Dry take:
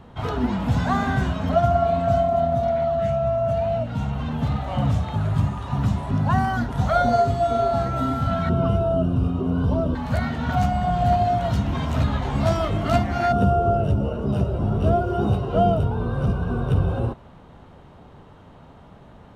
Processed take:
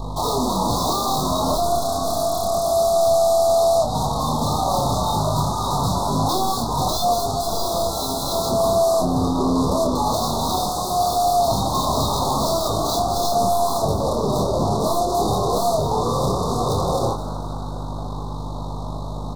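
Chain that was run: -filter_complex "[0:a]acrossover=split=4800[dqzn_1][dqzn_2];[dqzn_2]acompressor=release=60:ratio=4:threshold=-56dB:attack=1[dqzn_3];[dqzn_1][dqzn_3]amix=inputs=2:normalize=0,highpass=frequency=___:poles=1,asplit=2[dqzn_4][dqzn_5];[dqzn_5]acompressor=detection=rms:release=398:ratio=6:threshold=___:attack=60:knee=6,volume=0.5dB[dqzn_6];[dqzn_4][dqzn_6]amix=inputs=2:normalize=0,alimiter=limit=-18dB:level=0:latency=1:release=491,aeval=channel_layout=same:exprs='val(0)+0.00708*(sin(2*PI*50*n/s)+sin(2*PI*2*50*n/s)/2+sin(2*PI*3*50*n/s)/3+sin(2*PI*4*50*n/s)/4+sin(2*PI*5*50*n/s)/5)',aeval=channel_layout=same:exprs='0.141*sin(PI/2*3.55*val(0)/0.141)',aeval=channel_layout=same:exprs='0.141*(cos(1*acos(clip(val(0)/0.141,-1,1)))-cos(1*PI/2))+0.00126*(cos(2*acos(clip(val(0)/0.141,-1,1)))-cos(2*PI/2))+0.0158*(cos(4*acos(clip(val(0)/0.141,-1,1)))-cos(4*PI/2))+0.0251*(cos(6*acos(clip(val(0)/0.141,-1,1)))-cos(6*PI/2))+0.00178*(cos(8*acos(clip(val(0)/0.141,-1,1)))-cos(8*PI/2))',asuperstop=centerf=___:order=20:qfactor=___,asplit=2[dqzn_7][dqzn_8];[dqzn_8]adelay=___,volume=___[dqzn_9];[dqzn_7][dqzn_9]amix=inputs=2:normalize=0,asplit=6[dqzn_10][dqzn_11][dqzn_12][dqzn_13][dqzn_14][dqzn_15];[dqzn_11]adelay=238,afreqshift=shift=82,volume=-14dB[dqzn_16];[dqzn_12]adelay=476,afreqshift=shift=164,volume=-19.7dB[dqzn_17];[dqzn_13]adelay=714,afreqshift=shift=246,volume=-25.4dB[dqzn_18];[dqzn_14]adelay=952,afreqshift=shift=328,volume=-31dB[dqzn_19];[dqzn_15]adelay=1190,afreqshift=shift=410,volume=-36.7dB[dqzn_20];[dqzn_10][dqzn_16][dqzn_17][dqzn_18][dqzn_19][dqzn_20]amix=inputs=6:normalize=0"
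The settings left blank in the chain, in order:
1400, -39dB, 2100, 0.84, 27, -4dB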